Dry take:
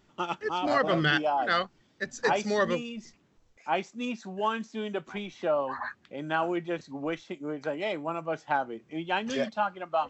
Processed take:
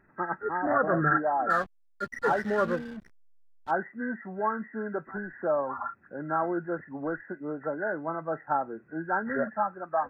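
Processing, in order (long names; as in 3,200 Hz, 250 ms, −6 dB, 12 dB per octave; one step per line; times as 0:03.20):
hearing-aid frequency compression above 1,300 Hz 4 to 1
0:01.50–0:03.71: slack as between gear wheels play −36.5 dBFS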